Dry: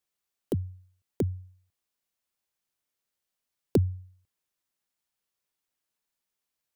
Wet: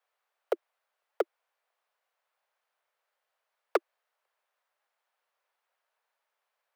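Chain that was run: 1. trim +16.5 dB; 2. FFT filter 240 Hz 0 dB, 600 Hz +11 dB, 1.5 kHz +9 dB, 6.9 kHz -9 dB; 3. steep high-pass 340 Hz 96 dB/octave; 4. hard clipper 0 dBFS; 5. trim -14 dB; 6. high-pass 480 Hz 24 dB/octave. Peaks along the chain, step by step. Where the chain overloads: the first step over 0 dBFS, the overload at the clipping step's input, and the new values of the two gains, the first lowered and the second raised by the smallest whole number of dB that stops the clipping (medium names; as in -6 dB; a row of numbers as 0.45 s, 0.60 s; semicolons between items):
+4.5 dBFS, +11.5 dBFS, +8.5 dBFS, 0.0 dBFS, -14.0 dBFS, -13.5 dBFS; step 1, 8.5 dB; step 1 +7.5 dB, step 5 -5 dB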